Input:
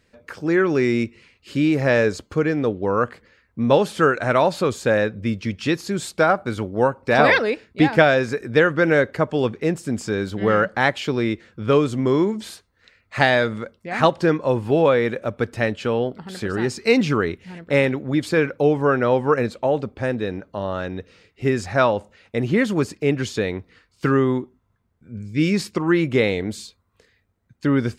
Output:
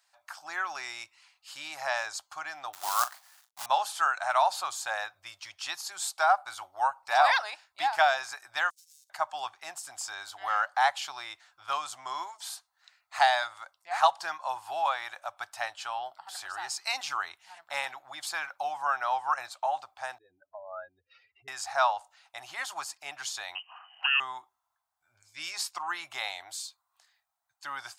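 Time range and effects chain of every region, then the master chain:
0:02.73–0:03.66: log-companded quantiser 4 bits + double-tracking delay 40 ms −12.5 dB
0:08.70–0:09.10: lower of the sound and its delayed copy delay 0.74 ms + inverse Chebyshev high-pass filter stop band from 1,100 Hz, stop band 80 dB + downward compressor 10 to 1, threshold −52 dBFS
0:20.18–0:21.48: expanding power law on the bin magnitudes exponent 2.7 + upward compression, threshold −38 dBFS
0:23.55–0:24.20: voice inversion scrambler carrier 3,000 Hz + upward compression, threshold −32 dBFS
whole clip: elliptic high-pass filter 750 Hz, stop band 40 dB; parametric band 2,100 Hz −14 dB 1.5 octaves; level +3 dB

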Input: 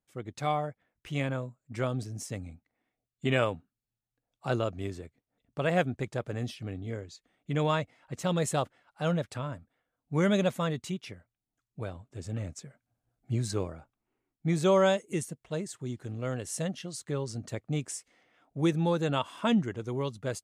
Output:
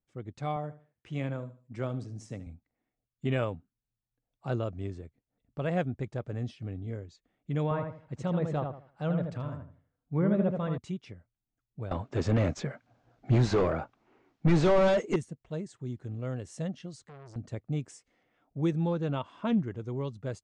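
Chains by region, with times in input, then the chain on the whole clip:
0:00.56–0:02.47: high-pass filter 120 Hz + repeating echo 73 ms, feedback 30%, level −15 dB
0:07.63–0:10.78: treble cut that deepens with the level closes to 1,400 Hz, closed at −22 dBFS + feedback echo with a low-pass in the loop 80 ms, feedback 29%, level −4.5 dB
0:11.91–0:15.16: low-pass filter 6,700 Hz 24 dB per octave + high-shelf EQ 3,900 Hz +7.5 dB + mid-hump overdrive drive 33 dB, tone 1,600 Hz, clips at −12.5 dBFS
0:16.95–0:17.36: downward compressor, threshold −34 dBFS + saturating transformer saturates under 1,600 Hz
0:18.87–0:19.71: high-frequency loss of the air 74 metres + highs frequency-modulated by the lows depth 0.14 ms
whole clip: low-pass filter 8,300 Hz 24 dB per octave; spectral tilt −2 dB per octave; level −5.5 dB

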